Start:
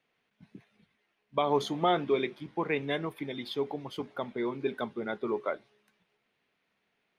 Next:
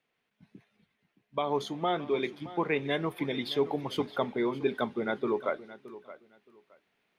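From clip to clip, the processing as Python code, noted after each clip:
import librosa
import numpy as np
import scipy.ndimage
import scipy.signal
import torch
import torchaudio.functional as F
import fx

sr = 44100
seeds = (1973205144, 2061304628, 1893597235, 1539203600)

y = fx.rider(x, sr, range_db=10, speed_s=0.5)
y = fx.echo_feedback(y, sr, ms=620, feedback_pct=21, wet_db=-16.5)
y = y * librosa.db_to_amplitude(1.0)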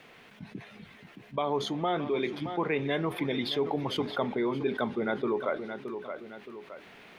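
y = fx.high_shelf(x, sr, hz=6400.0, db=-8.5)
y = fx.env_flatten(y, sr, amount_pct=50)
y = y * librosa.db_to_amplitude(-2.5)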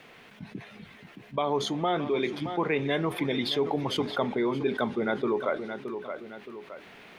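y = fx.dynamic_eq(x, sr, hz=7500.0, q=1.1, threshold_db=-58.0, ratio=4.0, max_db=5)
y = y * librosa.db_to_amplitude(2.0)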